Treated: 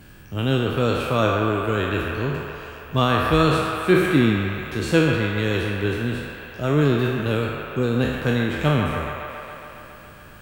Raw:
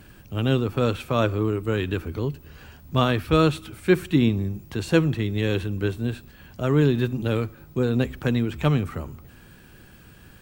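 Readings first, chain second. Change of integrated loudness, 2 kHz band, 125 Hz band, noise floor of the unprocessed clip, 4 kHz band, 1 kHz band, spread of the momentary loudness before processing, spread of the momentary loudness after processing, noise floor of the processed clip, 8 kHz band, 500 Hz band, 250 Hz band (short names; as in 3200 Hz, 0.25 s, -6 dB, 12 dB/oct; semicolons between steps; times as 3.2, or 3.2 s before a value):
+2.5 dB, +7.0 dB, +1.0 dB, -50 dBFS, +4.0 dB, +6.0 dB, 10 LU, 14 LU, -43 dBFS, +4.0 dB, +2.5 dB, +1.5 dB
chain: spectral trails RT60 0.89 s; band-limited delay 0.138 s, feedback 77%, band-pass 1300 Hz, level -3 dB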